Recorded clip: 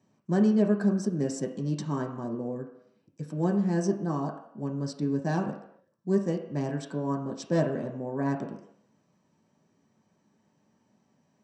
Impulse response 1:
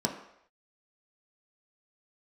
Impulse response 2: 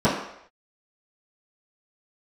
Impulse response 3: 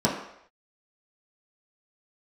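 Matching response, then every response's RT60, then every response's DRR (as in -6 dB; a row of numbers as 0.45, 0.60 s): 1; not exponential, not exponential, not exponential; 0.5, -14.5, -6.0 dB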